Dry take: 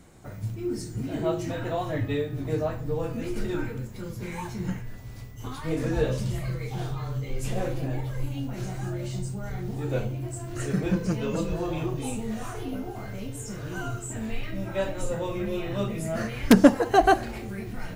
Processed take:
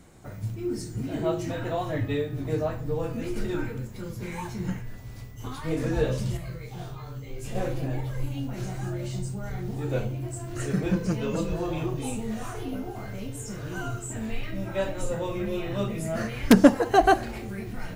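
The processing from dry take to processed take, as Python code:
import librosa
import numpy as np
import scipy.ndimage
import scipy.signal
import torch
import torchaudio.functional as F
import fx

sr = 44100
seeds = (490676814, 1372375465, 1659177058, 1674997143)

y = fx.comb_fb(x, sr, f0_hz=56.0, decay_s=0.2, harmonics='all', damping=0.0, mix_pct=90, at=(6.37, 7.55))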